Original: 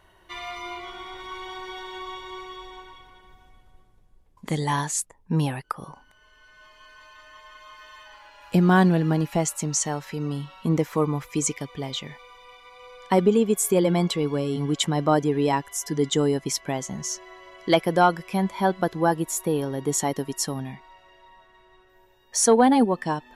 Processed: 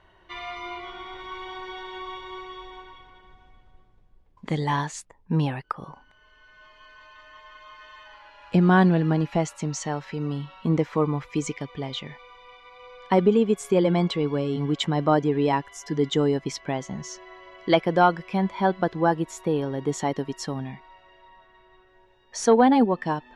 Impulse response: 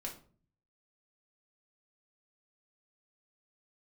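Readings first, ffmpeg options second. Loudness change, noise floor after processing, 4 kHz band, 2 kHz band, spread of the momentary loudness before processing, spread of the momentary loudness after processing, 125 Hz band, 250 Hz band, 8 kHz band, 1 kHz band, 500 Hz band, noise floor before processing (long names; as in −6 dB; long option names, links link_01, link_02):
−0.5 dB, −58 dBFS, −2.5 dB, 0.0 dB, 17 LU, 18 LU, 0.0 dB, 0.0 dB, −11.0 dB, 0.0 dB, 0.0 dB, −58 dBFS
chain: -af "lowpass=4000"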